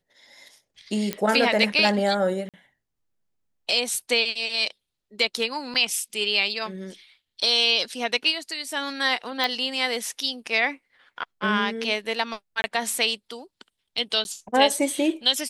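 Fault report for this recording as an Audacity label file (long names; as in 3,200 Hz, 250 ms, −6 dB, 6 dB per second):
1.130000	1.130000	click −10 dBFS
2.490000	2.540000	drop-out 47 ms
5.740000	5.750000	drop-out 7.2 ms
9.440000	9.440000	click −11 dBFS
12.620000	12.640000	drop-out 21 ms
14.240000	14.250000	drop-out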